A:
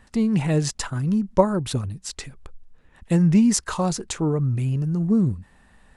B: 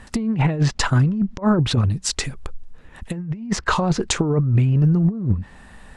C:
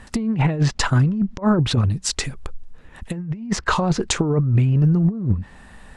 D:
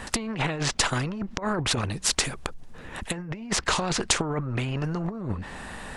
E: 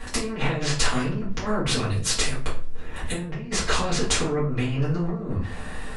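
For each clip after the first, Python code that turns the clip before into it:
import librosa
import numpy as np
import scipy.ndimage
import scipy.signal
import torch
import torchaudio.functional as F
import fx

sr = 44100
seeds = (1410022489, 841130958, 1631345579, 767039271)

y1 = fx.env_lowpass_down(x, sr, base_hz=2500.0, full_db=-19.0)
y1 = fx.over_compress(y1, sr, threshold_db=-24.0, ratio=-0.5)
y1 = F.gain(torch.from_numpy(y1), 6.5).numpy()
y2 = y1
y3 = fx.spectral_comp(y2, sr, ratio=2.0)
y4 = fx.room_shoebox(y3, sr, seeds[0], volume_m3=33.0, walls='mixed', distance_m=1.6)
y4 = F.gain(torch.from_numpy(y4), -8.5).numpy()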